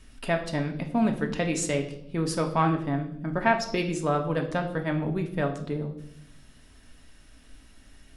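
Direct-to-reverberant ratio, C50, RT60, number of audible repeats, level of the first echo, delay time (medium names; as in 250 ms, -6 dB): 3.0 dB, 10.0 dB, 0.70 s, no echo, no echo, no echo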